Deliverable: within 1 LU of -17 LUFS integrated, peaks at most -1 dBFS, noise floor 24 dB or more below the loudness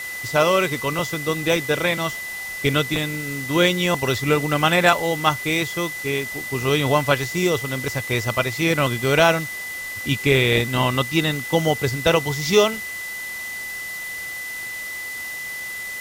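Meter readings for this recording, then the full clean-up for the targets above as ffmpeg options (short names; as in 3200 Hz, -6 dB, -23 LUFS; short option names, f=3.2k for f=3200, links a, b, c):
steady tone 2000 Hz; tone level -29 dBFS; noise floor -31 dBFS; noise floor target -46 dBFS; loudness -21.5 LUFS; peak -2.0 dBFS; loudness target -17.0 LUFS
-> -af "bandreject=f=2k:w=30"
-af "afftdn=nr=15:nf=-31"
-af "volume=4.5dB,alimiter=limit=-1dB:level=0:latency=1"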